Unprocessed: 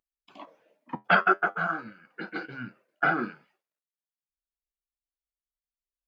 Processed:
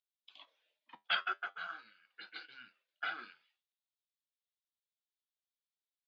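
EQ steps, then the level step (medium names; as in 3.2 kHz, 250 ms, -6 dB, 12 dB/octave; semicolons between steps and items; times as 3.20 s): band-pass filter 3.6 kHz, Q 3.9; +4.5 dB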